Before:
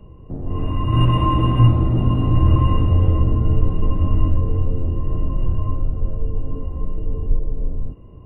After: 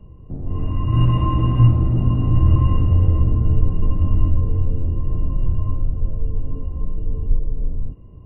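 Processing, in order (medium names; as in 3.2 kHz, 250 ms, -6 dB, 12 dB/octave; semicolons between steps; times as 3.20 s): tone controls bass +6 dB, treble -4 dB; trim -5.5 dB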